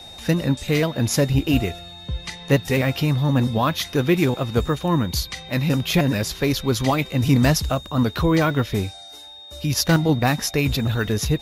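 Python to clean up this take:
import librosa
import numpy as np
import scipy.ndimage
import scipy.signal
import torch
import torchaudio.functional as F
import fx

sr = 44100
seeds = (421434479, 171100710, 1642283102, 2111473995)

y = fx.notch(x, sr, hz=3700.0, q=30.0)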